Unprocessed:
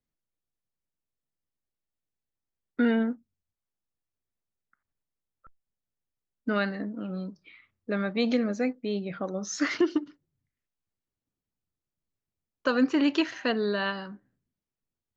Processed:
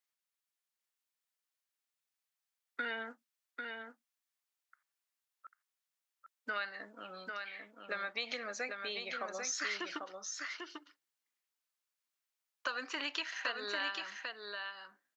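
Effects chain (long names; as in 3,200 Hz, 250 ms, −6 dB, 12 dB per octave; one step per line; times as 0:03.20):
high-pass filter 1,100 Hz 12 dB per octave
downward compressor 4 to 1, threshold −40 dBFS, peak gain reduction 12 dB
single-tap delay 795 ms −5 dB
level +4 dB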